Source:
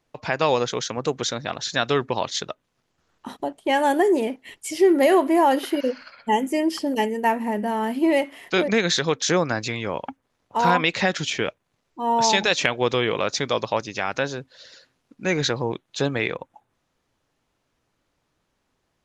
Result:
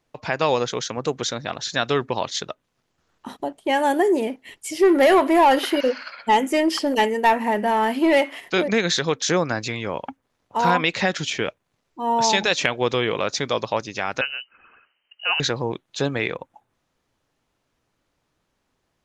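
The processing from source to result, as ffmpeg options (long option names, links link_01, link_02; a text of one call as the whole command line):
ffmpeg -i in.wav -filter_complex "[0:a]asplit=3[link_01][link_02][link_03];[link_01]afade=type=out:start_time=4.82:duration=0.02[link_04];[link_02]asplit=2[link_05][link_06];[link_06]highpass=frequency=720:poles=1,volume=14dB,asoftclip=type=tanh:threshold=-7.5dB[link_07];[link_05][link_07]amix=inputs=2:normalize=0,lowpass=frequency=5000:poles=1,volume=-6dB,afade=type=in:start_time=4.82:duration=0.02,afade=type=out:start_time=8.39:duration=0.02[link_08];[link_03]afade=type=in:start_time=8.39:duration=0.02[link_09];[link_04][link_08][link_09]amix=inputs=3:normalize=0,asettb=1/sr,asplit=3[link_10][link_11][link_12];[link_10]atrim=end=14.214[link_13];[link_11]atrim=start=14.21:end=15.4,asetpts=PTS-STARTPTS,afade=type=in:duration=0.004:curve=qsin,afade=type=out:start_time=1.186:duration=0.004:curve=qsin,lowpass=frequency=2600:width_type=q:width=0.5098,lowpass=frequency=2600:width_type=q:width=0.6013,lowpass=frequency=2600:width_type=q:width=0.9,lowpass=frequency=2600:width_type=q:width=2.563,afreqshift=-3100[link_14];[link_12]atrim=start=15.396[link_15];[link_13][link_14]acrossfade=duration=0.004:curve1=hsin:curve2=qsin[link_16];[link_16][link_15]acrossfade=duration=0.004:curve1=qsin:curve2=hsin" out.wav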